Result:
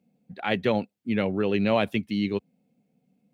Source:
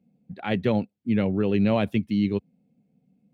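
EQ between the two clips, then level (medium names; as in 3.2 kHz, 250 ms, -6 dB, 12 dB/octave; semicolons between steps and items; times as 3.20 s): bass shelf 300 Hz -11.5 dB; +4.0 dB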